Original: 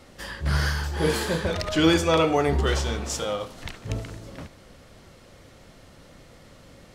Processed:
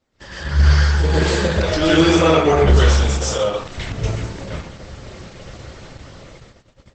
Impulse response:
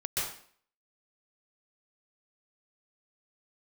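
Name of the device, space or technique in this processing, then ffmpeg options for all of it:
speakerphone in a meeting room: -filter_complex "[1:a]atrim=start_sample=2205[link_01];[0:a][link_01]afir=irnorm=-1:irlink=0,dynaudnorm=framelen=230:gausssize=11:maxgain=9dB,agate=range=-19dB:threshold=-39dB:ratio=16:detection=peak" -ar 48000 -c:a libopus -b:a 12k

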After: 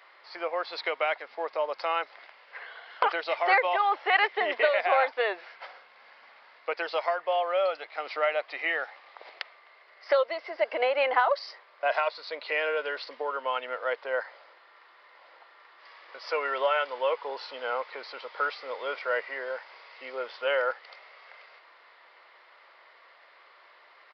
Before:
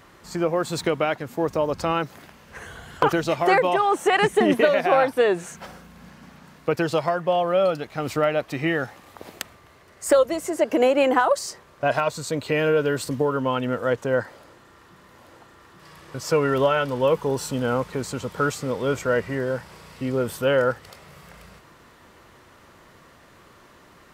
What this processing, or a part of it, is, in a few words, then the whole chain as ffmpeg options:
musical greeting card: -af "aresample=11025,aresample=44100,highpass=frequency=560:width=0.5412,highpass=frequency=560:width=1.3066,equalizer=frequency=2100:width_type=o:width=0.22:gain=8,volume=-3.5dB"

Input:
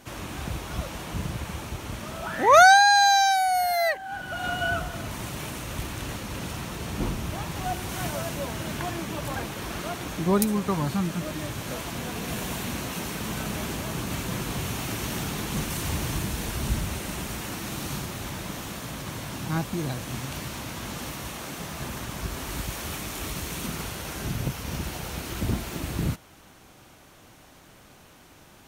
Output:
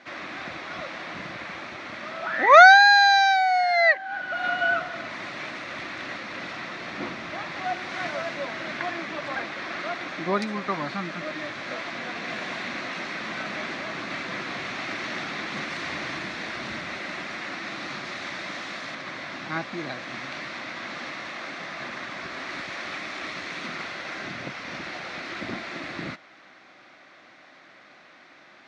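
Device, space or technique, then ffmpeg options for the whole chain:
phone earpiece: -filter_complex "[0:a]highpass=400,equalizer=frequency=440:width_type=q:width=4:gain=-10,equalizer=frequency=900:width_type=q:width=4:gain=-8,equalizer=frequency=2000:width_type=q:width=4:gain=6,equalizer=frequency=3000:width_type=q:width=4:gain=-8,lowpass=frequency=4200:width=0.5412,lowpass=frequency=4200:width=1.3066,asettb=1/sr,asplit=3[link_01][link_02][link_03];[link_01]atrim=end=18.054[link_04];[link_02]atrim=start=18.05:end=18.95,asetpts=PTS-STARTPTS,afade=type=in:duration=0.004:curve=qsin,afade=type=out:start_time=0.896:duration=0.004:curve=qsin,highshelf=frequency=4000:gain=6[link_05];[link_03]atrim=start=18.946[link_06];[link_04][link_05]acrossfade=duration=0.004:curve1=hsin:curve2=qsin[link_07];[link_07][link_06]acrossfade=duration=0.004:curve1=qsin:curve2=hsin,volume=5dB"

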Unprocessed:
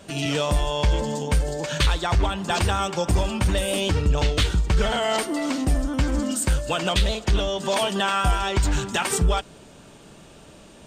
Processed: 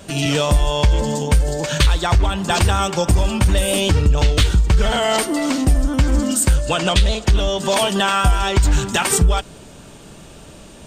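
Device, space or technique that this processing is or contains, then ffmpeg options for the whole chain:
ASMR close-microphone chain: -filter_complex "[0:a]lowshelf=frequency=110:gain=6.5,acompressor=threshold=-15dB:ratio=6,highshelf=frequency=7100:gain=5.5,asettb=1/sr,asplit=3[link_01][link_02][link_03];[link_01]atrim=end=6.564[link_04];[link_02]atrim=start=6.56:end=7.24,asetpts=PTS-STARTPTS,afade=type=in:duration=0.004:curve=qsin,afade=type=out:start_time=0.676:duration=0.004:curve=qsin,lowpass=9900[link_05];[link_03]atrim=start=7.236[link_06];[link_04][link_05]acrossfade=duration=0.004:curve1=hsin:curve2=qsin[link_07];[link_07][link_06]acrossfade=duration=0.004:curve1=qsin:curve2=hsin,volume=5dB"

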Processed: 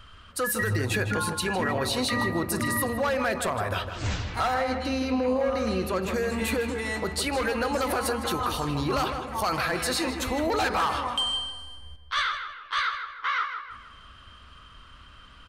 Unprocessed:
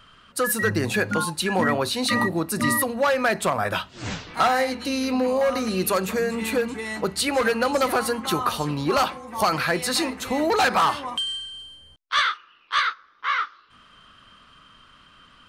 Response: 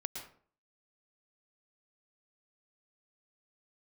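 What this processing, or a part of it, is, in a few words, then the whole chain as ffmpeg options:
car stereo with a boomy subwoofer: -filter_complex "[0:a]lowshelf=frequency=110:width_type=q:width=1.5:gain=10,alimiter=limit=-18.5dB:level=0:latency=1:release=88,asettb=1/sr,asplit=3[link_01][link_02][link_03];[link_01]atrim=end=4.544[link_04];[link_02]atrim=start=4.54:end=6.14,asetpts=PTS-STARTPTS,afade=type=in:duration=0.004:curve=qsin,afade=type=out:start_time=1.596:duration=0.004:curve=qsin,aemphasis=mode=reproduction:type=50kf[link_05];[link_03]atrim=start=6.136[link_06];[link_04][link_05]acrossfade=duration=0.004:curve1=hsin:curve2=qsin[link_07];[link_07][link_06]acrossfade=duration=0.004:curve1=qsin:curve2=hsin,asplit=2[link_08][link_09];[link_09]adelay=157,lowpass=frequency=2800:poles=1,volume=-7dB,asplit=2[link_10][link_11];[link_11]adelay=157,lowpass=frequency=2800:poles=1,volume=0.48,asplit=2[link_12][link_13];[link_13]adelay=157,lowpass=frequency=2800:poles=1,volume=0.48,asplit=2[link_14][link_15];[link_15]adelay=157,lowpass=frequency=2800:poles=1,volume=0.48,asplit=2[link_16][link_17];[link_17]adelay=157,lowpass=frequency=2800:poles=1,volume=0.48,asplit=2[link_18][link_19];[link_19]adelay=157,lowpass=frequency=2800:poles=1,volume=0.48[link_20];[link_08][link_10][link_12][link_14][link_16][link_18][link_20]amix=inputs=7:normalize=0"

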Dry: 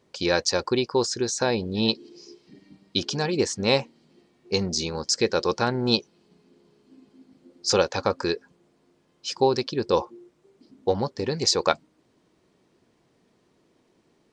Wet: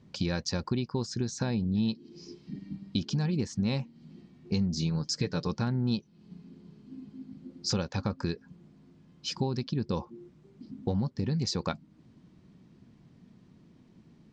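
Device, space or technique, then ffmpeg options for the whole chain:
jukebox: -filter_complex "[0:a]asettb=1/sr,asplit=3[link_01][link_02][link_03];[link_01]atrim=end=4.764[link_04];[link_02]atrim=start=4.76:end=5.48,asetpts=PTS-STARTPTS,afade=type=in:duration=0.004:curve=qsin,afade=type=out:start_time=0.716:duration=0.004:curve=qsin,aecho=1:1:6.8:0.61,atrim=end_sample=31752[link_05];[link_03]atrim=start=5.476[link_06];[link_04][link_05]acrossfade=duration=0.004:curve1=hsin:curve2=qsin[link_07];[link_07][link_06]acrossfade=duration=0.004:curve1=qsin:curve2=hsin,lowpass=6400,lowshelf=frequency=290:width_type=q:width=1.5:gain=12.5,acompressor=threshold=-29dB:ratio=3,volume=-1dB"

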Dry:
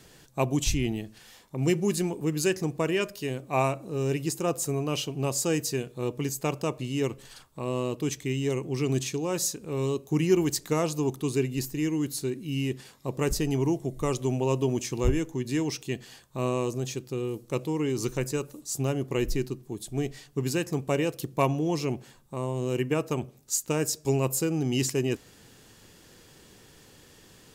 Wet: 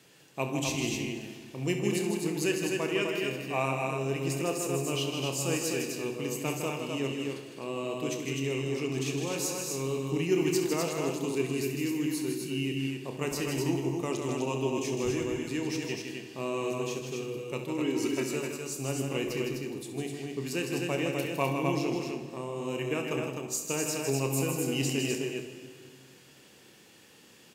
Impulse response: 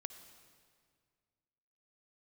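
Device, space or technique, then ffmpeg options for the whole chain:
stadium PA: -filter_complex "[0:a]asettb=1/sr,asplit=3[link_01][link_02][link_03];[link_01]atrim=end=17.784[link_04];[link_02]atrim=start=17.78:end=18.33,asetpts=PTS-STARTPTS,afade=type=in:duration=0.004:curve=qsin,afade=type=out:start_time=0.546:duration=0.004:curve=qsin,aecho=1:1:3.1:0.7,atrim=end_sample=24255[link_05];[link_03]atrim=start=18.326[link_06];[link_04][link_05]acrossfade=duration=0.004:curve1=hsin:curve2=qsin[link_07];[link_07][link_06]acrossfade=duration=0.004:curve1=qsin:curve2=hsin,highpass=150,equalizer=frequency=2600:width_type=o:width=0.55:gain=6,aecho=1:1:157.4|253.6:0.501|0.631,aecho=1:1:29|67:0.335|0.282[link_08];[1:a]atrim=start_sample=2205[link_09];[link_08][link_09]afir=irnorm=-1:irlink=0,volume=-2dB"

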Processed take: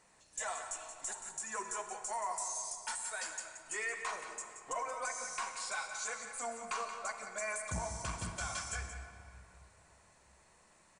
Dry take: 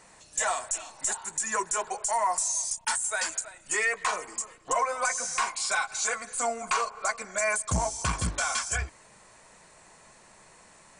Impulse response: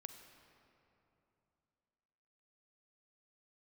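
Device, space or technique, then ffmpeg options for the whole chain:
cave: -filter_complex "[0:a]aecho=1:1:177:0.316[link_01];[1:a]atrim=start_sample=2205[link_02];[link_01][link_02]afir=irnorm=-1:irlink=0,volume=-6dB"

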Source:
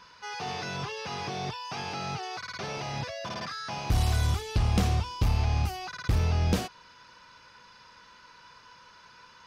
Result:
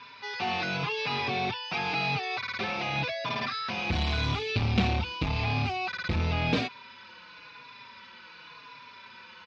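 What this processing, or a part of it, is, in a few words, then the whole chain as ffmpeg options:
barber-pole flanger into a guitar amplifier: -filter_complex "[0:a]asplit=2[link_01][link_02];[link_02]adelay=4.5,afreqshift=-0.91[link_03];[link_01][link_03]amix=inputs=2:normalize=1,asoftclip=type=tanh:threshold=-23.5dB,highpass=100,equalizer=frequency=250:width_type=q:width=4:gain=5,equalizer=frequency=2400:width_type=q:width=4:gain=10,equalizer=frequency=3800:width_type=q:width=4:gain=6,lowpass=frequency=4600:width=0.5412,lowpass=frequency=4600:width=1.3066,volume=6dB"

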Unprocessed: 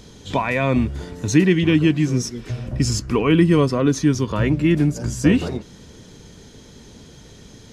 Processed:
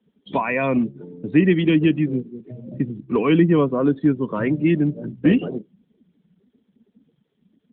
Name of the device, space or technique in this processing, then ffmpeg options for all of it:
mobile call with aggressive noise cancelling: -af "highpass=frequency=160:width=0.5412,highpass=frequency=160:width=1.3066,afftdn=noise_reduction=26:noise_floor=-30" -ar 8000 -c:a libopencore_amrnb -b:a 12200

